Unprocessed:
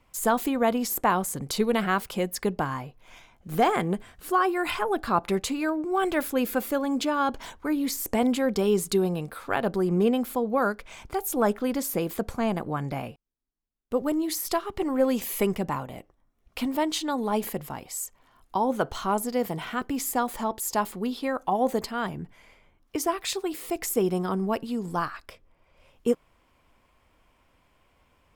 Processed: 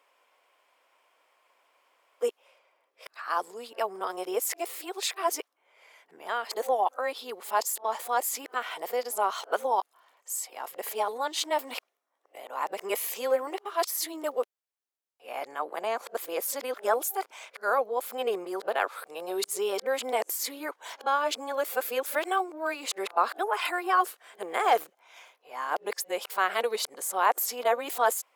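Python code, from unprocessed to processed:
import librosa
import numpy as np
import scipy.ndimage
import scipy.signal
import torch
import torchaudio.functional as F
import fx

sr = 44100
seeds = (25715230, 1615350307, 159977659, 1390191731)

y = x[::-1].copy()
y = scipy.signal.sosfilt(scipy.signal.butter(4, 470.0, 'highpass', fs=sr, output='sos'), y)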